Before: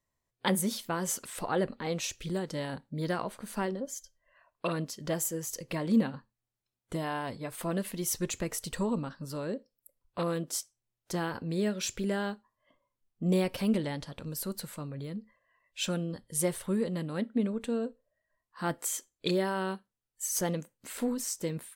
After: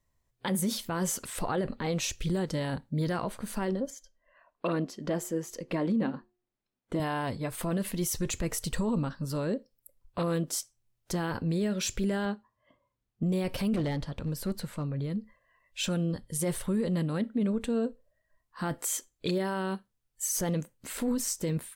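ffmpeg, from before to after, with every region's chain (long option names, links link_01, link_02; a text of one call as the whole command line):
ffmpeg -i in.wav -filter_complex "[0:a]asettb=1/sr,asplit=3[link_01][link_02][link_03];[link_01]atrim=end=3.904[link_04];[link_02]atrim=start=3.9:end=7,asetpts=PTS-STARTPTS,afade=type=in:duration=0.004:curve=qsin,afade=type=out:start_time=3.096:duration=0.004:curve=qsin,lowpass=frequency=2300:poles=1,lowshelf=frequency=160:width_type=q:width=1.5:gain=-11,bandreject=frequency=359.2:width_type=h:width=4,bandreject=frequency=718.4:width_type=h:width=4[link_05];[link_03]atrim=start=6.996[link_06];[link_04][link_05]acrossfade=duration=0.004:curve1=hsin:curve2=qsin[link_07];[link_07][link_06]acrossfade=duration=0.004:curve1=qsin:curve2=hsin,asettb=1/sr,asplit=3[link_08][link_09][link_10];[link_08]atrim=end=12.254[link_11];[link_09]atrim=start=12.25:end=13.23,asetpts=PTS-STARTPTS,afade=type=in:duration=0.004:curve=qsin,afade=type=out:start_time=0.976:duration=0.004:curve=qsin,highpass=52,highshelf=frequency=5400:gain=-10.5[link_12];[link_10]atrim=start=13.226[link_13];[link_11][link_12]acrossfade=duration=0.004:curve1=hsin:curve2=qsin[link_14];[link_14][link_13]acrossfade=duration=0.004:curve1=qsin:curve2=hsin,asettb=1/sr,asplit=3[link_15][link_16][link_17];[link_15]atrim=end=13.764[link_18];[link_16]atrim=start=13.76:end=15.1,asetpts=PTS-STARTPTS,afade=type=in:duration=0.004:curve=qsin,afade=type=out:start_time=1.336:duration=0.004:curve=qsin,lowpass=frequency=3700:poles=1,asoftclip=type=hard:threshold=-30.5dB[link_19];[link_17]atrim=start=15.096[link_20];[link_18][link_19]acrossfade=duration=0.004:curve1=hsin:curve2=qsin[link_21];[link_21][link_20]acrossfade=duration=0.004:curve1=qsin:curve2=hsin,lowshelf=frequency=110:gain=11.5,alimiter=level_in=0.5dB:limit=-24dB:level=0:latency=1:release=18,volume=-0.5dB,volume=3dB" out.wav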